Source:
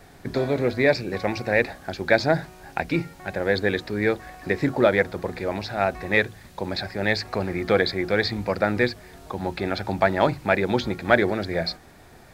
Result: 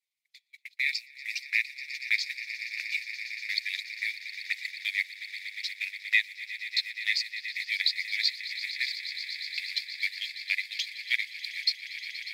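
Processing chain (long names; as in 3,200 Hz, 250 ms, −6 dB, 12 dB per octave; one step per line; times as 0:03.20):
spectral magnitudes quantised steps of 15 dB
Butterworth high-pass 2,000 Hz 96 dB per octave
noise gate −39 dBFS, range −31 dB
on a send: echo that builds up and dies away 119 ms, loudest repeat 8, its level −14 dB
on the sum: transient designer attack +3 dB, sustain −6 dB
level +1 dB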